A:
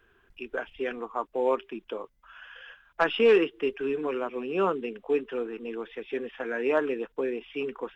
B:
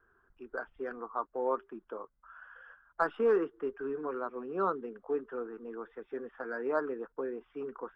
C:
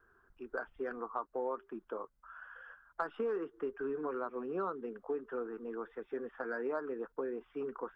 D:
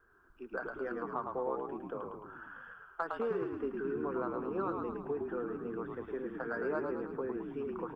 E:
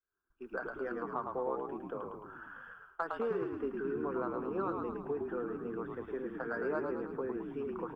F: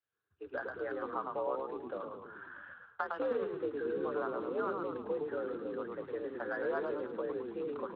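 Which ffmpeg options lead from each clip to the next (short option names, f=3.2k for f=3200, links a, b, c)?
-filter_complex "[0:a]highshelf=f=1.9k:t=q:w=3:g=-11,acrossover=split=1900[a][b];[b]asoftclip=type=tanh:threshold=-38dB[c];[a][c]amix=inputs=2:normalize=0,volume=-7.5dB"
-af "acompressor=threshold=-34dB:ratio=6,volume=1dB"
-filter_complex "[0:a]asplit=9[a][b][c][d][e][f][g][h][i];[b]adelay=108,afreqshift=-46,volume=-4dB[j];[c]adelay=216,afreqshift=-92,volume=-8.7dB[k];[d]adelay=324,afreqshift=-138,volume=-13.5dB[l];[e]adelay=432,afreqshift=-184,volume=-18.2dB[m];[f]adelay=540,afreqshift=-230,volume=-22.9dB[n];[g]adelay=648,afreqshift=-276,volume=-27.7dB[o];[h]adelay=756,afreqshift=-322,volume=-32.4dB[p];[i]adelay=864,afreqshift=-368,volume=-37.1dB[q];[a][j][k][l][m][n][o][p][q]amix=inputs=9:normalize=0"
-af "agate=range=-33dB:threshold=-51dB:ratio=3:detection=peak"
-af "afreqshift=60" -ar 16000 -c:a libspeex -b:a 21k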